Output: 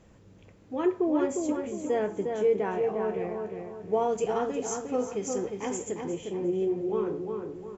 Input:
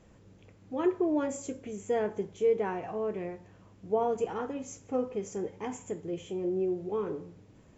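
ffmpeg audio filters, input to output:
-filter_complex "[0:a]asettb=1/sr,asplit=3[a][b][c];[a]atrim=end=3.934[d];[b]atrim=start=3.93:end=6.04,asetpts=PTS-STARTPTS,afade=t=in:d=0.004:c=qsin,afade=t=out:st=2.106:d=0.004:c=qsin,highshelf=f=3k:g=9.5[e];[c]atrim=start=6.036[f];[d][e]acrossfade=d=0.004:c1=hsin:c2=qsin[g];[g][f]acrossfade=d=0.004:c1=qsin:c2=hsin,asplit=2[h][i];[i]adelay=356,lowpass=f=2.7k:p=1,volume=-4.5dB,asplit=2[j][k];[k]adelay=356,lowpass=f=2.7k:p=1,volume=0.42,asplit=2[l][m];[m]adelay=356,lowpass=f=2.7k:p=1,volume=0.42,asplit=2[n][o];[o]adelay=356,lowpass=f=2.7k:p=1,volume=0.42,asplit=2[p][q];[q]adelay=356,lowpass=f=2.7k:p=1,volume=0.42[r];[h][j][l][n][p][r]amix=inputs=6:normalize=0,volume=1.5dB"

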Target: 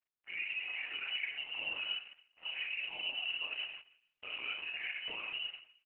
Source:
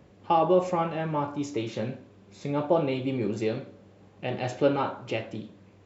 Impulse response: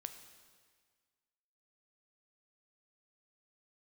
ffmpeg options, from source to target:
-filter_complex "[0:a]bandreject=f=60:t=h:w=6,bandreject=f=120:t=h:w=6,agate=range=-15dB:threshold=-48dB:ratio=16:detection=peak,asplit=3[a][b][c];[a]afade=t=out:st=1.07:d=0.02[d];[b]adynamicequalizer=threshold=0.00794:dfrequency=310:dqfactor=1.9:tfrequency=310:tqfactor=1.9:attack=5:release=100:ratio=0.375:range=1.5:mode=cutabove:tftype=bell,afade=t=in:st=1.07:d=0.02,afade=t=out:st=3.52:d=0.02[e];[c]afade=t=in:st=3.52:d=0.02[f];[d][e][f]amix=inputs=3:normalize=0,acompressor=threshold=-35dB:ratio=6,alimiter=level_in=11dB:limit=-24dB:level=0:latency=1:release=17,volume=-11dB,acrusher=bits=8:mix=0:aa=0.5,asplit=2[g][h];[h]adelay=40,volume=-3dB[i];[g][i]amix=inputs=2:normalize=0,asplit=2[j][k];[k]adelay=150,lowpass=f=2.4k:p=1,volume=-19dB,asplit=2[l][m];[m]adelay=150,lowpass=f=2.4k:p=1,volume=0.22[n];[j][l][n]amix=inputs=3:normalize=0[o];[1:a]atrim=start_sample=2205,afade=t=out:st=0.18:d=0.01,atrim=end_sample=8379[p];[o][p]afir=irnorm=-1:irlink=0,lowpass=f=2.6k:t=q:w=0.5098,lowpass=f=2.6k:t=q:w=0.6013,lowpass=f=2.6k:t=q:w=0.9,lowpass=f=2.6k:t=q:w=2.563,afreqshift=-3100,volume=8.5dB" -ar 48000 -c:a libopus -b:a 8k

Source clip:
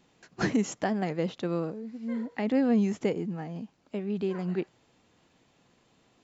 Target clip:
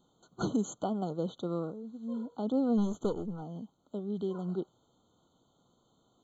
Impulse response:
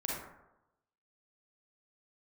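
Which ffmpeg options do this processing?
-filter_complex "[0:a]asplit=3[a][b][c];[a]afade=t=out:st=2.77:d=0.02[d];[b]aeval=exprs='0.188*(cos(1*acos(clip(val(0)/0.188,-1,1)))-cos(1*PI/2))+0.0168*(cos(8*acos(clip(val(0)/0.188,-1,1)))-cos(8*PI/2))':c=same,afade=t=in:st=2.77:d=0.02,afade=t=out:st=3.41:d=0.02[e];[c]afade=t=in:st=3.41:d=0.02[f];[d][e][f]amix=inputs=3:normalize=0,afftfilt=real='re*eq(mod(floor(b*sr/1024/1500),2),0)':imag='im*eq(mod(floor(b*sr/1024/1500),2),0)':win_size=1024:overlap=0.75,volume=-4dB"

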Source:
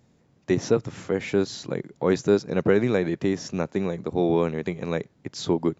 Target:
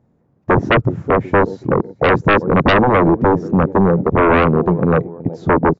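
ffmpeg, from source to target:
-filter_complex "[0:a]afwtdn=0.0501,aecho=1:1:373|746|1119:0.0794|0.0318|0.0127,acrossover=split=1500[a][b];[a]aeval=exprs='0.422*sin(PI/2*5.62*val(0)/0.422)':c=same[c];[c][b]amix=inputs=2:normalize=0"

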